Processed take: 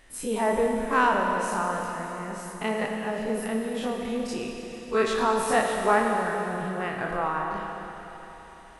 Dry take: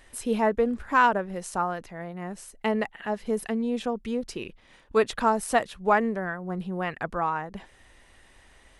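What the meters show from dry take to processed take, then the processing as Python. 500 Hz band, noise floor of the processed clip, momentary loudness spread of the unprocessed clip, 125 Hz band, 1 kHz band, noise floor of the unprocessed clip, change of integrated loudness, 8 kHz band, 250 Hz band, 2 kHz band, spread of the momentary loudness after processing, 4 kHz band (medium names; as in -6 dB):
+1.0 dB, -46 dBFS, 14 LU, 0.0 dB, +0.5 dB, -57 dBFS, +0.5 dB, +2.5 dB, -0.5 dB, +1.0 dB, 13 LU, +2.5 dB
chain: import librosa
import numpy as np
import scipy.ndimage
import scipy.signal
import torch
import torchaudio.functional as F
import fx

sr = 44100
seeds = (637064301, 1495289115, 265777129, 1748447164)

y = fx.spec_dilate(x, sr, span_ms=60)
y = fx.rev_schroeder(y, sr, rt60_s=3.8, comb_ms=28, drr_db=1.0)
y = F.gain(torch.from_numpy(y), -5.0).numpy()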